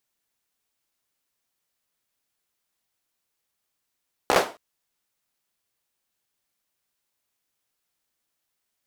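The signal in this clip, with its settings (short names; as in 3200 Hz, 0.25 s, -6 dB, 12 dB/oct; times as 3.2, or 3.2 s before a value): hand clap length 0.27 s, bursts 5, apart 15 ms, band 620 Hz, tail 0.31 s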